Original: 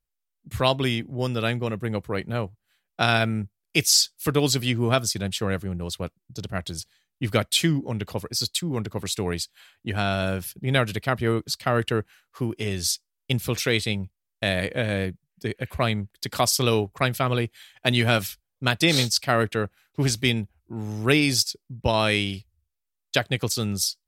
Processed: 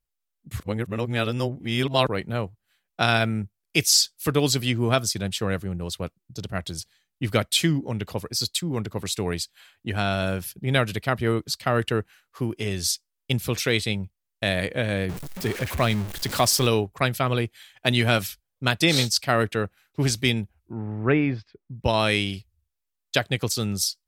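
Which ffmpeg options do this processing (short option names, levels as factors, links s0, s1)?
-filter_complex "[0:a]asettb=1/sr,asplit=3[s0][s1][s2];[s0]atrim=end=15.094[s3];[s1]atrim=start=15.09:end=16.67,asetpts=PTS-STARTPTS,afade=t=in:d=0.004:c=qsin,afade=t=out:st=1.576:d=0.004:c=qsin,aeval=exprs='val(0)+0.5*0.0376*sgn(val(0))':c=same[s4];[s2]atrim=start=16.666[s5];[s3][s4]acrossfade=d=0.004:c1=hsin:c2=qsin[s6];[s6][s5]acrossfade=d=0.004:c1=qsin:c2=hsin,asettb=1/sr,asplit=3[s7][s8][s9];[s7]atrim=end=20.734[s10];[s8]atrim=start=20.73:end=21.75,asetpts=PTS-STARTPTS,afade=t=in:d=0.004:c=qsin,afade=t=out:st=1.016:d=0.004:c=qsin,lowpass=f=2000:w=0.5412,lowpass=f=2000:w=1.3066[s11];[s9]atrim=start=21.746[s12];[s10][s11]acrossfade=d=0.004:c1=hsin:c2=qsin[s13];[s13][s12]acrossfade=d=0.004:c1=qsin:c2=hsin,asplit=3[s14][s15][s16];[s14]atrim=end=0.602[s17];[s15]atrim=start=0.598:end=2.072,asetpts=PTS-STARTPTS,areverse[s18];[s16]atrim=start=2.068[s19];[s17][s18]acrossfade=d=0.004:c1=hsin:c2=hsin[s20];[s20][s19]acrossfade=d=0.004:c1=hsin:c2=hsin"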